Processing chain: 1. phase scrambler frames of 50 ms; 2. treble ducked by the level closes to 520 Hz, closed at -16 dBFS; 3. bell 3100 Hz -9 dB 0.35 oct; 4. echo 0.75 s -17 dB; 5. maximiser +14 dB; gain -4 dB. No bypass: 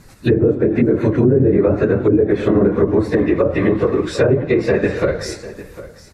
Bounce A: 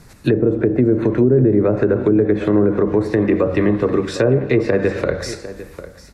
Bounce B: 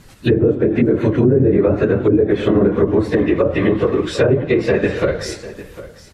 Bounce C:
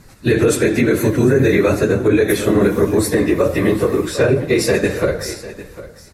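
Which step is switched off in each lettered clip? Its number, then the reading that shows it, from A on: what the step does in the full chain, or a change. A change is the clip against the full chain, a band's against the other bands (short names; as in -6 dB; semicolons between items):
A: 1, momentary loudness spread change +1 LU; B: 3, 4 kHz band +3.0 dB; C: 2, 4 kHz band +7.0 dB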